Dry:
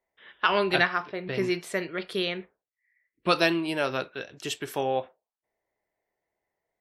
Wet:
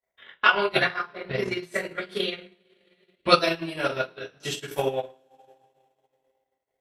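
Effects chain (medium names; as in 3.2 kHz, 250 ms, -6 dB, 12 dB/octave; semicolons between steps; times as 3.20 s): two-slope reverb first 0.47 s, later 2.8 s, from -26 dB, DRR -9 dB; transient shaper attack +11 dB, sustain -12 dB; trim -11 dB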